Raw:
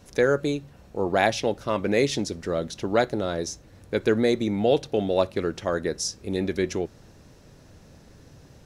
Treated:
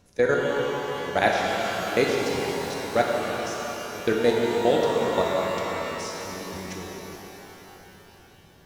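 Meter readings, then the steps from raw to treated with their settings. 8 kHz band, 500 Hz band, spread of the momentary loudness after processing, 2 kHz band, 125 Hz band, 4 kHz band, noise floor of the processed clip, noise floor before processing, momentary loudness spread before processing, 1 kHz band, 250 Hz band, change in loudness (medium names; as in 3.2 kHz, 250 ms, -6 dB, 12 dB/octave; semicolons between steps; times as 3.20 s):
-2.5 dB, 0.0 dB, 14 LU, +3.0 dB, -4.0 dB, +1.0 dB, -52 dBFS, -52 dBFS, 9 LU, +3.5 dB, -3.5 dB, 0.0 dB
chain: level held to a coarse grid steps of 20 dB; pitch-shifted reverb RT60 3.9 s, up +12 st, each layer -8 dB, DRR -2.5 dB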